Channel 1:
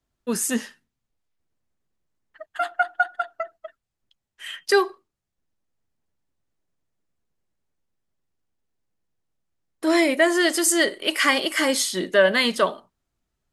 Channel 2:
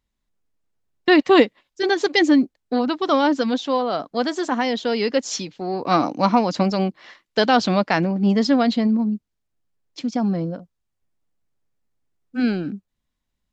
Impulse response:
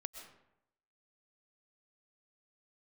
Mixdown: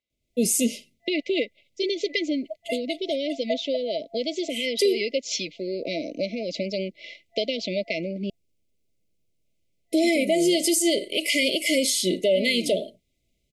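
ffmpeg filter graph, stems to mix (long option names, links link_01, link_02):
-filter_complex "[0:a]adelay=100,volume=-3dB[link_01];[1:a]acompressor=threshold=-25dB:ratio=3,bandpass=frequency=1600:width_type=q:width=0.6:csg=0,volume=0dB,asplit=3[link_02][link_03][link_04];[link_02]atrim=end=8.3,asetpts=PTS-STARTPTS,afade=type=out:start_time=8.296:duration=0.004:curve=hsin[link_05];[link_03]atrim=start=8.3:end=9.46,asetpts=PTS-STARTPTS,volume=0[link_06];[link_04]atrim=start=9.46,asetpts=PTS-STARTPTS,afade=type=in:duration=0.004:curve=hsin[link_07];[link_05][link_06][link_07]concat=n=3:v=0:a=1[link_08];[link_01][link_08]amix=inputs=2:normalize=0,dynaudnorm=framelen=190:gausssize=3:maxgain=8.5dB,afftfilt=real='re*(1-between(b*sr/4096,680,2000))':imag='im*(1-between(b*sr/4096,680,2000))':win_size=4096:overlap=0.75,alimiter=limit=-13dB:level=0:latency=1:release=96"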